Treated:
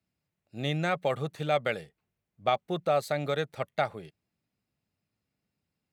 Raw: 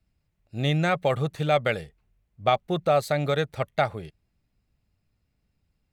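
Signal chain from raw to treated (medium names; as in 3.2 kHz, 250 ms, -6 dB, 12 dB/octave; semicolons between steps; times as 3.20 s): high-pass 150 Hz 12 dB/octave; trim -4.5 dB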